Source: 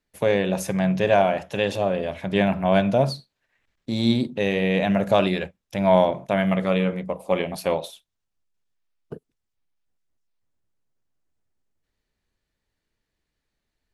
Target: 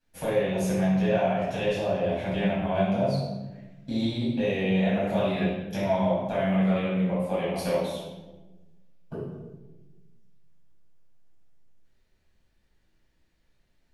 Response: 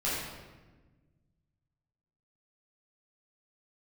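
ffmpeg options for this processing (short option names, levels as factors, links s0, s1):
-filter_complex "[0:a]acompressor=threshold=0.0178:ratio=3[s0];[1:a]atrim=start_sample=2205,asetrate=52920,aresample=44100[s1];[s0][s1]afir=irnorm=-1:irlink=0"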